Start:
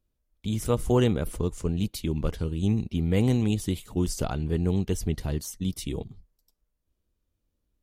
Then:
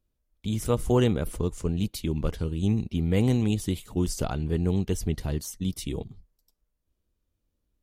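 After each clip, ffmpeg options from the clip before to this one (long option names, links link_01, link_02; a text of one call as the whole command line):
ffmpeg -i in.wav -af anull out.wav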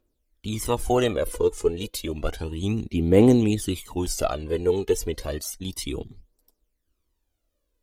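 ffmpeg -i in.wav -af "aphaser=in_gain=1:out_gain=1:delay=2.4:decay=0.63:speed=0.31:type=triangular,lowshelf=frequency=230:width_type=q:width=1.5:gain=-8.5,volume=3dB" out.wav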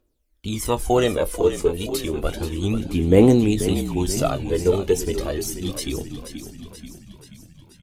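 ffmpeg -i in.wav -filter_complex "[0:a]asplit=2[link_01][link_02];[link_02]adelay=22,volume=-12.5dB[link_03];[link_01][link_03]amix=inputs=2:normalize=0,asplit=2[link_04][link_05];[link_05]asplit=7[link_06][link_07][link_08][link_09][link_10][link_11][link_12];[link_06]adelay=482,afreqshift=-50,volume=-10.5dB[link_13];[link_07]adelay=964,afreqshift=-100,volume=-14.9dB[link_14];[link_08]adelay=1446,afreqshift=-150,volume=-19.4dB[link_15];[link_09]adelay=1928,afreqshift=-200,volume=-23.8dB[link_16];[link_10]adelay=2410,afreqshift=-250,volume=-28.2dB[link_17];[link_11]adelay=2892,afreqshift=-300,volume=-32.7dB[link_18];[link_12]adelay=3374,afreqshift=-350,volume=-37.1dB[link_19];[link_13][link_14][link_15][link_16][link_17][link_18][link_19]amix=inputs=7:normalize=0[link_20];[link_04][link_20]amix=inputs=2:normalize=0,volume=2.5dB" out.wav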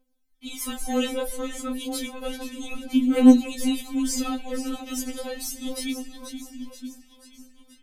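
ffmpeg -i in.wav -filter_complex "[0:a]acrossover=split=340|1800[link_01][link_02][link_03];[link_02]asoftclip=type=tanh:threshold=-21.5dB[link_04];[link_01][link_04][link_03]amix=inputs=3:normalize=0,afftfilt=real='re*3.46*eq(mod(b,12),0)':imag='im*3.46*eq(mod(b,12),0)':win_size=2048:overlap=0.75" out.wav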